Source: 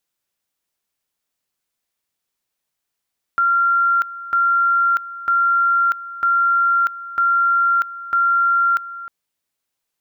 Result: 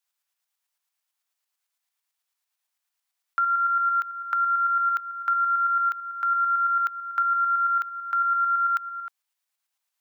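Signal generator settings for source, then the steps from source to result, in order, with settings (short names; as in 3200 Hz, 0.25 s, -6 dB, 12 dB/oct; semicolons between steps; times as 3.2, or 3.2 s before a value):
two-level tone 1380 Hz -13 dBFS, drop 16 dB, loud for 0.64 s, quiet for 0.31 s, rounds 6
HPF 710 Hz 24 dB/oct; compressor 4:1, threshold -20 dBFS; tremolo saw up 9 Hz, depth 45%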